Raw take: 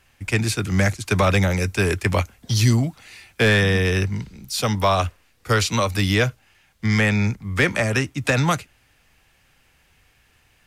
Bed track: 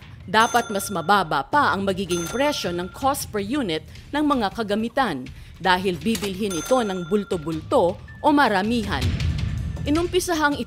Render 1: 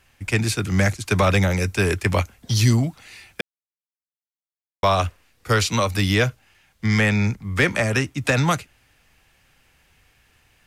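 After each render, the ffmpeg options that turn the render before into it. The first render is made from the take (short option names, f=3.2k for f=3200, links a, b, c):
-filter_complex "[0:a]asplit=3[a][b][c];[a]atrim=end=3.41,asetpts=PTS-STARTPTS,afade=t=out:st=3.406:d=0.004:c=hsin[d];[b]atrim=start=3.41:end=4.83,asetpts=PTS-STARTPTS,volume=0[e];[c]atrim=start=4.83,asetpts=PTS-STARTPTS,afade=t=in:d=0.004:c=hsin[f];[d][e][f]concat=n=3:v=0:a=1"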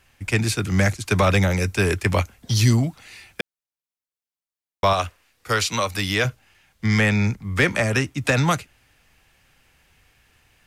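-filter_complex "[0:a]asettb=1/sr,asplit=3[a][b][c];[a]atrim=end=4.934[d];[b]atrim=start=4.93:end=6.25,asetpts=PTS-STARTPTS,afade=t=in:d=0.004:c=qsin,afade=t=out:st=1.316:d=0.004:c=qsin,lowshelf=f=380:g=-8[e];[c]atrim=start=6.246[f];[d][e]acrossfade=d=0.004:c1=hsin:c2=qsin[g];[g][f]acrossfade=d=0.004:c1=qsin:c2=hsin"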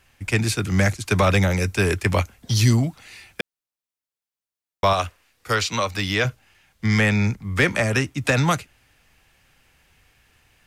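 -filter_complex "[0:a]asettb=1/sr,asplit=3[a][b][c];[a]atrim=end=5.554[d];[b]atrim=start=5.55:end=6.27,asetpts=PTS-STARTPTS,afade=t=in:d=0.004:c=qsin,afade=t=out:st=0.716:d=0.004:c=qsin,equalizer=f=11k:t=o:w=0.7:g=-11[e];[c]atrim=start=6.266[f];[d][e]acrossfade=d=0.004:c1=hsin:c2=qsin[g];[g][f]acrossfade=d=0.004:c1=qsin:c2=hsin"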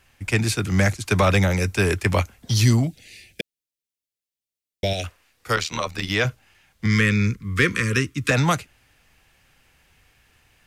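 -filter_complex "[0:a]asettb=1/sr,asplit=3[a][b][c];[a]atrim=end=2.874[d];[b]atrim=start=2.87:end=5.04,asetpts=PTS-STARTPTS,afade=t=in:d=0.004:c=qsin,afade=t=out:st=2.166:d=0.004:c=qsin,asuperstop=centerf=1100:order=4:qfactor=0.69[e];[c]atrim=start=5.036[f];[d][e]acrossfade=d=0.004:c1=hsin:c2=qsin[g];[g][f]acrossfade=d=0.004:c1=qsin:c2=hsin,asettb=1/sr,asplit=3[h][i][j];[h]atrim=end=5.564[k];[i]atrim=start=5.56:end=6.11,asetpts=PTS-STARTPTS,afade=t=in:d=0.004:c=qsin,afade=t=out:st=0.546:d=0.004:c=qsin,tremolo=f=78:d=0.788[l];[j]atrim=start=6.106[m];[k][l]acrossfade=d=0.004:c1=hsin:c2=qsin[n];[n][m]acrossfade=d=0.004:c1=qsin:c2=hsin,asettb=1/sr,asplit=3[o][p][q];[o]atrim=end=6.864[r];[p]atrim=start=6.86:end=8.31,asetpts=PTS-STARTPTS,afade=t=in:d=0.004:c=qsin,afade=t=out:st=1.446:d=0.004:c=qsin,asuperstop=centerf=720:order=12:qfactor=1.4[s];[q]atrim=start=8.306[t];[r][s]acrossfade=d=0.004:c1=hsin:c2=qsin[u];[u][t]acrossfade=d=0.004:c1=qsin:c2=hsin"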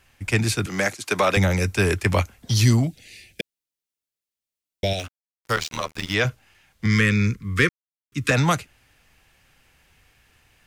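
-filter_complex "[0:a]asettb=1/sr,asplit=3[a][b][c];[a]atrim=end=0.664[d];[b]atrim=start=0.66:end=1.37,asetpts=PTS-STARTPTS,afade=t=in:d=0.004:c=qsin,afade=t=out:st=0.706:d=0.004:c=qsin,highpass=290[e];[c]atrim=start=1.366[f];[d][e]acrossfade=d=0.004:c1=hsin:c2=qsin[g];[g][f]acrossfade=d=0.004:c1=qsin:c2=hsin,asettb=1/sr,asplit=3[h][i][j];[h]atrim=end=4.994[k];[i]atrim=start=4.99:end=6.14,asetpts=PTS-STARTPTS,afade=t=in:d=0.004:c=qsin,afade=t=out:st=1.146:d=0.004:c=qsin,aeval=exprs='sgn(val(0))*max(abs(val(0))-0.0178,0)':c=same[l];[j]atrim=start=6.136[m];[k][l]acrossfade=d=0.004:c1=hsin:c2=qsin[n];[n][m]acrossfade=d=0.004:c1=qsin:c2=hsin,asplit=3[o][p][q];[o]atrim=end=7.69,asetpts=PTS-STARTPTS,afade=t=out:st=7.686:d=0.004:c=hsin[r];[p]atrim=start=7.69:end=8.12,asetpts=PTS-STARTPTS,volume=0[s];[q]atrim=start=8.12,asetpts=PTS-STARTPTS,afade=t=in:d=0.004:c=hsin[t];[r][s][t]concat=n=3:v=0:a=1"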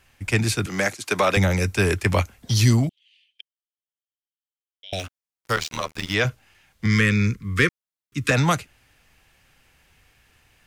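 -filter_complex "[0:a]asettb=1/sr,asplit=3[a][b][c];[a]atrim=end=2.894[d];[b]atrim=start=2.89:end=4.93,asetpts=PTS-STARTPTS,afade=t=in:d=0.004:c=qsin,afade=t=out:st=2.036:d=0.004:c=qsin,bandpass=f=3.1k:t=q:w=17[e];[c]atrim=start=4.926[f];[d][e]acrossfade=d=0.004:c1=hsin:c2=qsin[g];[g][f]acrossfade=d=0.004:c1=qsin:c2=hsin"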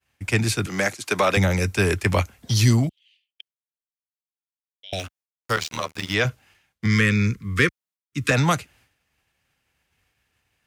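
-af "highpass=54,agate=range=-33dB:threshold=-51dB:ratio=3:detection=peak"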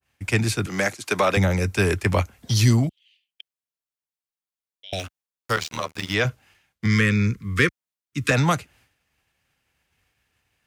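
-af "adynamicequalizer=threshold=0.0224:dfrequency=1700:dqfactor=0.7:tfrequency=1700:tqfactor=0.7:attack=5:release=100:ratio=0.375:range=3:mode=cutabove:tftype=highshelf"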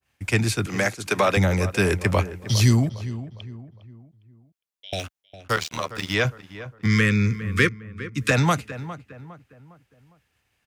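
-filter_complex "[0:a]asplit=2[a][b];[b]adelay=407,lowpass=f=1.8k:p=1,volume=-13.5dB,asplit=2[c][d];[d]adelay=407,lowpass=f=1.8k:p=1,volume=0.42,asplit=2[e][f];[f]adelay=407,lowpass=f=1.8k:p=1,volume=0.42,asplit=2[g][h];[h]adelay=407,lowpass=f=1.8k:p=1,volume=0.42[i];[a][c][e][g][i]amix=inputs=5:normalize=0"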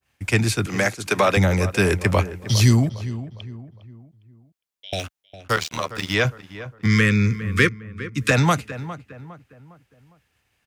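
-af "volume=2dB"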